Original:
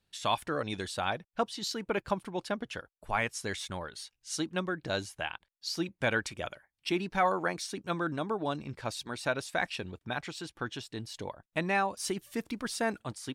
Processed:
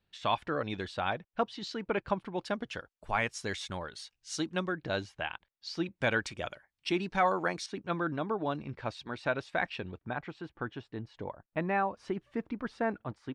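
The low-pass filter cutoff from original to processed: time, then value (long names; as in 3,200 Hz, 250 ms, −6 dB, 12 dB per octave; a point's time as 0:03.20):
3,400 Hz
from 0:02.45 6,800 Hz
from 0:04.72 3,700 Hz
from 0:05.96 6,700 Hz
from 0:07.66 3,000 Hz
from 0:10.01 1,700 Hz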